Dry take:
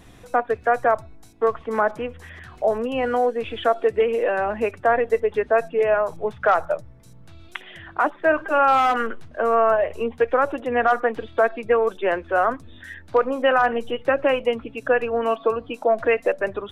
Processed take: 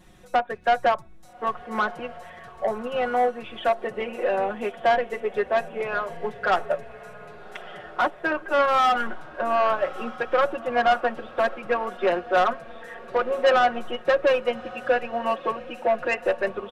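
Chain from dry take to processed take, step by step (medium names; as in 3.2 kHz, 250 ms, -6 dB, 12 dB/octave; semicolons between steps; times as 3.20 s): comb 5.5 ms, depth 87%; saturation -13 dBFS, distortion -13 dB; on a send: echo that smears into a reverb 1224 ms, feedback 43%, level -12.5 dB; on the sum: upward expansion 1.5:1, over -29 dBFS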